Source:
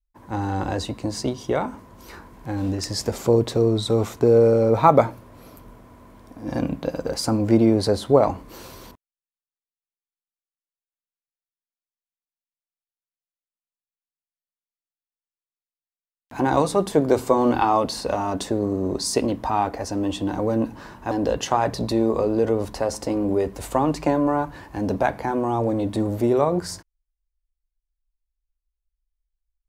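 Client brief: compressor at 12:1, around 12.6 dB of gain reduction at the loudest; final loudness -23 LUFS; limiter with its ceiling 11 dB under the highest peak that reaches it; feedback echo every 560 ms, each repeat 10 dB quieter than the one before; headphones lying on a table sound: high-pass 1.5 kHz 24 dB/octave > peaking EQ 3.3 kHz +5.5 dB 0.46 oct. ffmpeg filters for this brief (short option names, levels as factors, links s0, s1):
-af "acompressor=threshold=0.0794:ratio=12,alimiter=limit=0.1:level=0:latency=1,highpass=f=1500:w=0.5412,highpass=f=1500:w=1.3066,equalizer=f=3300:t=o:w=0.46:g=5.5,aecho=1:1:560|1120|1680|2240:0.316|0.101|0.0324|0.0104,volume=5.62"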